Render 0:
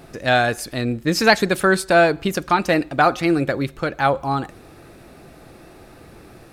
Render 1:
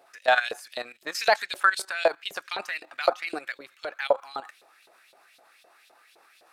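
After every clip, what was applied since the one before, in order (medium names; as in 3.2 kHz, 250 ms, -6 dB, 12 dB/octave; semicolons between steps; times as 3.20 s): LFO high-pass saw up 3.9 Hz 530–3900 Hz; level held to a coarse grid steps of 14 dB; trim -3 dB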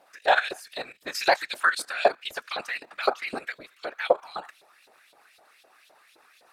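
whisper effect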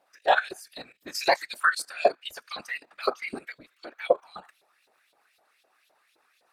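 spectral noise reduction 9 dB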